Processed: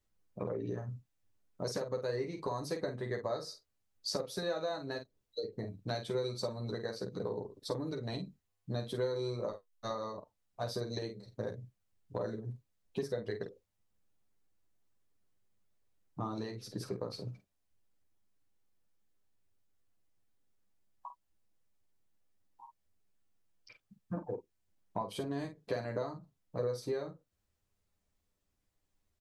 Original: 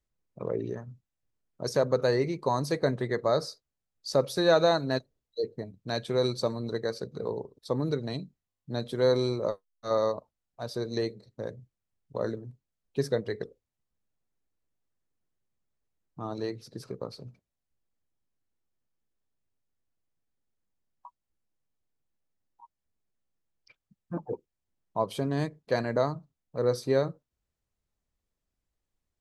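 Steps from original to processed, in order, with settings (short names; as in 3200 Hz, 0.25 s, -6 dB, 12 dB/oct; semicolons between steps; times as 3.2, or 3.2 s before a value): compressor 10:1, threshold -36 dBFS, peak gain reduction 19 dB; on a send: early reflections 10 ms -3 dB, 50 ms -7.5 dB; on the sum: gain +1 dB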